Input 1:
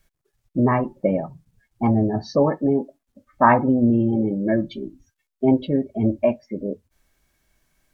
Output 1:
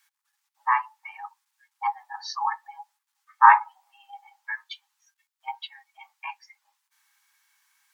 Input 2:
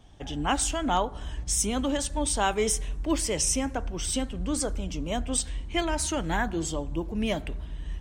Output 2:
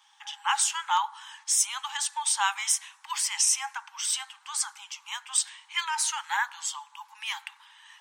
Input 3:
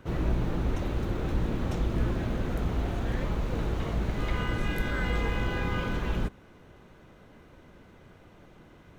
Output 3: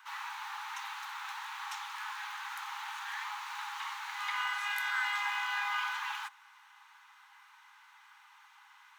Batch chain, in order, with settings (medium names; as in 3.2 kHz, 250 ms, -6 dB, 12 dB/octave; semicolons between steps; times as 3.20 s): Chebyshev high-pass 810 Hz, order 10; trim +3.5 dB